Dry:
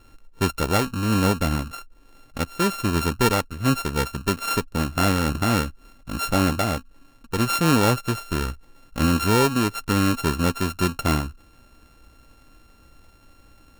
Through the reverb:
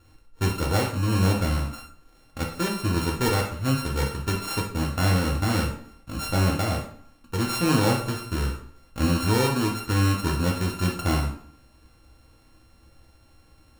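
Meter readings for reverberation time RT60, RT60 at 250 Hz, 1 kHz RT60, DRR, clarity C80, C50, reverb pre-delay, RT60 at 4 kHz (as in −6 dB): 0.60 s, 0.65 s, 0.55 s, −1.0 dB, 9.5 dB, 6.0 dB, 3 ms, 0.50 s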